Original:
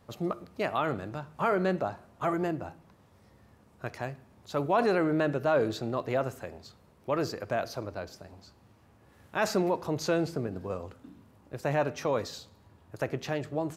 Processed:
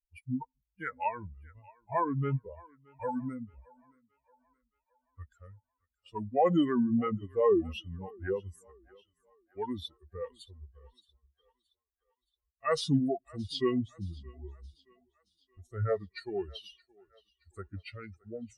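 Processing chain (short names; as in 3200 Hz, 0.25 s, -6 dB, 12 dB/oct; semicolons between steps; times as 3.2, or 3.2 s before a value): per-bin expansion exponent 3; speed mistake 45 rpm record played at 33 rpm; thinning echo 0.622 s, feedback 51%, high-pass 460 Hz, level -23 dB; gain +4.5 dB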